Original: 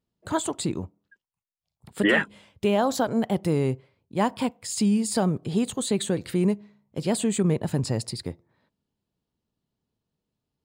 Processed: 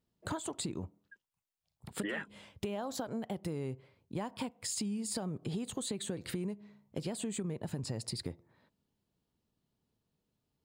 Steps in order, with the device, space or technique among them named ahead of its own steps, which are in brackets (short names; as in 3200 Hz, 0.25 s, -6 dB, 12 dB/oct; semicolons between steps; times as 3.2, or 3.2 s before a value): serial compression, peaks first (compressor, threshold -30 dBFS, peak gain reduction 13 dB; compressor 2:1, threshold -37 dBFS, peak gain reduction 6 dB)